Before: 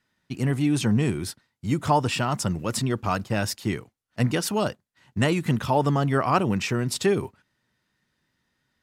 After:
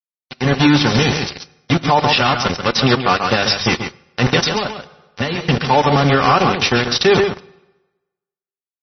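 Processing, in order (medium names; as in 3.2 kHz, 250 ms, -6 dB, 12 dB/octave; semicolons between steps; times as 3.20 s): 3.22–3.63 s: zero-crossing glitches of -23.5 dBFS; cabinet simulation 160–8800 Hz, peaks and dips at 210 Hz -6 dB, 460 Hz -4 dB, 3.8 kHz +7 dB; hum notches 50/100/150/200/250 Hz; small samples zeroed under -26 dBFS; comb of notches 320 Hz; reverberation RT60 1.1 s, pre-delay 3 ms, DRR 19.5 dB; level rider gain up to 8.5 dB; 0.86–1.66 s: tone controls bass -1 dB, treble +11 dB; 4.45–5.45 s: compression 10:1, threshold -25 dBFS, peak gain reduction 11 dB; delay 136 ms -9 dB; loudness maximiser +10.5 dB; trim -1.5 dB; MP3 24 kbps 24 kHz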